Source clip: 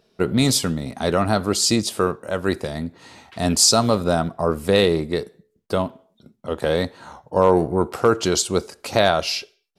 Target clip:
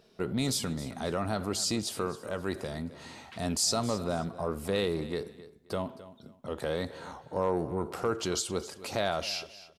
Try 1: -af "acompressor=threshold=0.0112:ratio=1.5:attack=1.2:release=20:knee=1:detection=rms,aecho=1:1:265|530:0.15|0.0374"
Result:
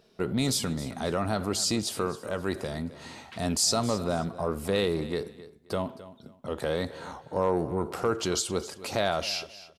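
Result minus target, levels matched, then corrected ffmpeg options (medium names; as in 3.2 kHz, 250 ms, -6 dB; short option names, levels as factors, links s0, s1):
compression: peak gain reduction -3 dB
-af "acompressor=threshold=0.00398:ratio=1.5:attack=1.2:release=20:knee=1:detection=rms,aecho=1:1:265|530:0.15|0.0374"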